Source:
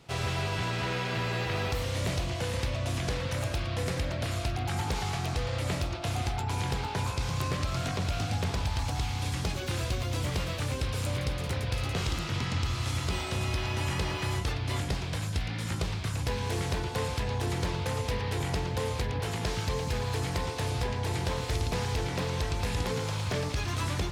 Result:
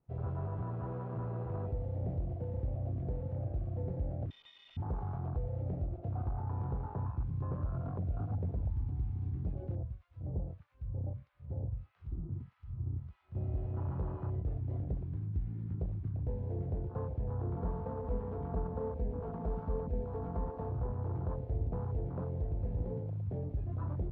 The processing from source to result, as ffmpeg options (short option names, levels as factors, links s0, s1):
-filter_complex "[0:a]asettb=1/sr,asplit=3[s0][s1][s2];[s0]atrim=end=4.304[s3];[s1]atrim=start=4.3:end=4.77,asetpts=PTS-STARTPTS,afade=t=in:d=0.004:c=qsin,afade=t=out:st=0.466:d=0.004:c=qsin,lowpass=f=3100:t=q:w=0.5098,lowpass=f=3100:t=q:w=0.6013,lowpass=f=3100:t=q:w=0.9,lowpass=f=3100:t=q:w=2.563,afreqshift=-3700[s4];[s2]atrim=start=4.766[s5];[s3][s4]acrossfade=d=0.004:c1=hsin:c2=qsin[s6];[s6][s5]acrossfade=d=0.004:c1=qsin:c2=hsin,asettb=1/sr,asplit=3[s7][s8][s9];[s7]atrim=end=9.754[s10];[s8]atrim=start=9.75:end=13.35,asetpts=PTS-STARTPTS,afade=t=in:d=0.004:c=qsin,afade=t=out:st=3.596:d=0.004:c=qsin,acrossover=split=1100[s11][s12];[s11]aeval=exprs='val(0)*(1-1/2+1/2*cos(2*PI*1.6*n/s))':c=same[s13];[s12]aeval=exprs='val(0)*(1-1/2-1/2*cos(2*PI*1.6*n/s))':c=same[s14];[s13][s14]amix=inputs=2:normalize=0[s15];[s9]atrim=start=13.346[s16];[s10][s15]acrossfade=d=0.004:c1=hsin:c2=qsin[s17];[s17][s16]acrossfade=d=0.004:c1=qsin:c2=hsin,asettb=1/sr,asplit=3[s18][s19][s20];[s18]atrim=end=17.564[s21];[s19]atrim=start=17.56:end=20.7,asetpts=PTS-STARTPTS,afade=t=in:d=0.004:c=qsin,afade=t=out:st=3.136:d=0.004:c=qsin,aecho=1:1:4.4:0.77,atrim=end_sample=138474[s22];[s20]atrim=start=20.696[s23];[s21][s22]acrossfade=d=0.004:c1=hsin:c2=qsin[s24];[s24][s23]acrossfade=d=0.004:c1=qsin:c2=hsin,asettb=1/sr,asplit=3[s25][s26][s27];[s25]atrim=end=22.984[s28];[s26]atrim=start=22.98:end=23.67,asetpts=PTS-STARTPTS,afade=t=in:d=0.004:c=qsin,afade=t=out:st=0.686:d=0.004:c=qsin,equalizer=f=1000:w=0.83:g=-4.5[s29];[s27]atrim=start=23.666[s30];[s28][s29]acrossfade=d=0.004:c1=hsin:c2=qsin[s31];[s31][s30]acrossfade=d=0.004:c1=qsin:c2=hsin,afwtdn=0.0282,lowpass=1100,lowshelf=f=150:g=6,volume=0.398"